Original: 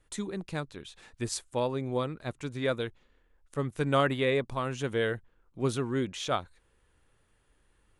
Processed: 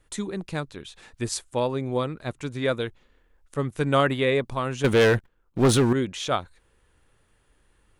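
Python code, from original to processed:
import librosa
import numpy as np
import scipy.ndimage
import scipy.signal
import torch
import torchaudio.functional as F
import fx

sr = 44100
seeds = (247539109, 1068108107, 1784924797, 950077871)

y = fx.leveller(x, sr, passes=3, at=(4.84, 5.93))
y = y * 10.0 ** (4.5 / 20.0)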